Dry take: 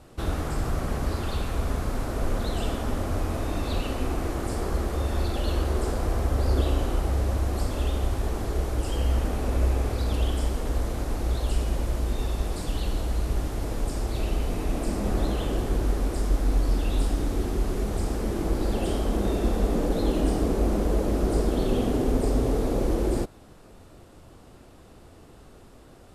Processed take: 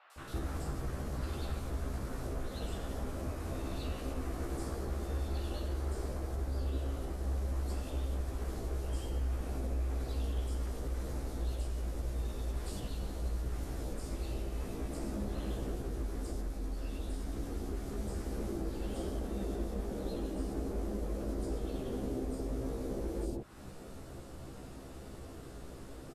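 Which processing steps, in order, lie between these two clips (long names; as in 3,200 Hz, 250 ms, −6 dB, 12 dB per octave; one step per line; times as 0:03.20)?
downward compressor, threshold −37 dBFS, peak gain reduction 18.5 dB
double-tracking delay 15 ms −3 dB
three-band delay without the direct sound mids, highs, lows 100/160 ms, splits 900/2,900 Hz
level +1 dB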